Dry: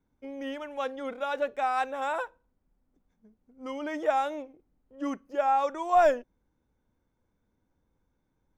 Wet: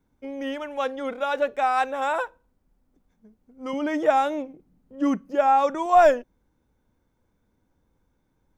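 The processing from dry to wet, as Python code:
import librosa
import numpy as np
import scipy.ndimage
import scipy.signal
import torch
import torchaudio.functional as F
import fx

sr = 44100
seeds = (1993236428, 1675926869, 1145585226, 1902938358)

y = fx.peak_eq(x, sr, hz=180.0, db=12.0, octaves=1.0, at=(3.73, 5.86))
y = y * librosa.db_to_amplitude(5.5)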